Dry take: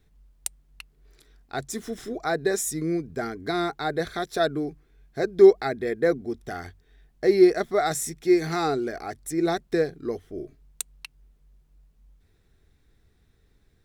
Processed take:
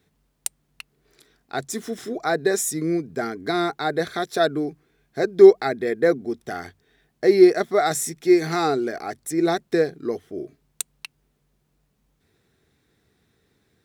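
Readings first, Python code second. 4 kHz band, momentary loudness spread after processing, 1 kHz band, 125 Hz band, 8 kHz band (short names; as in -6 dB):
+3.5 dB, 18 LU, +3.5 dB, +1.5 dB, +3.5 dB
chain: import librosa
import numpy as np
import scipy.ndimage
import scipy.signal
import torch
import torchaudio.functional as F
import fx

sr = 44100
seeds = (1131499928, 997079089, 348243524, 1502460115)

y = scipy.signal.sosfilt(scipy.signal.butter(2, 140.0, 'highpass', fs=sr, output='sos'), x)
y = F.gain(torch.from_numpy(y), 3.5).numpy()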